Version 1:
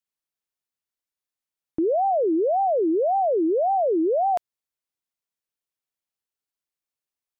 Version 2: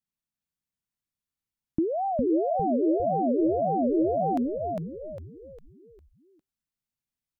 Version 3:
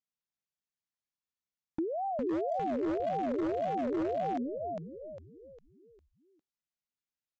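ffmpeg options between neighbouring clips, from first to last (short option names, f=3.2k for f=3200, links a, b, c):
-filter_complex "[0:a]lowshelf=f=300:t=q:w=1.5:g=11,asplit=6[a][b][c][d][e][f];[b]adelay=404,afreqshift=-79,volume=-3dB[g];[c]adelay=808,afreqshift=-158,volume=-10.7dB[h];[d]adelay=1212,afreqshift=-237,volume=-18.5dB[i];[e]adelay=1616,afreqshift=-316,volume=-26.2dB[j];[f]adelay=2020,afreqshift=-395,volume=-34dB[k];[a][g][h][i][j][k]amix=inputs=6:normalize=0,volume=-5dB"
-af "lowshelf=f=170:g=-8.5,aresample=16000,aeval=exprs='0.0891*(abs(mod(val(0)/0.0891+3,4)-2)-1)':c=same,aresample=44100,volume=-5.5dB"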